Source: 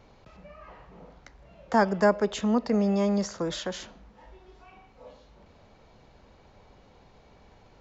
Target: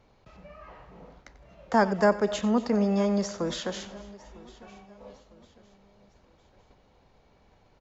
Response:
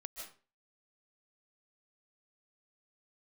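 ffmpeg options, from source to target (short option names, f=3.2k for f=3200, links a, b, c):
-filter_complex "[0:a]agate=range=-6dB:threshold=-53dB:ratio=16:detection=peak,aecho=1:1:955|1910|2865:0.0841|0.0345|0.0141,asplit=2[a][b];[1:a]atrim=start_sample=2205,adelay=92[c];[b][c]afir=irnorm=-1:irlink=0,volume=-10.5dB[d];[a][d]amix=inputs=2:normalize=0"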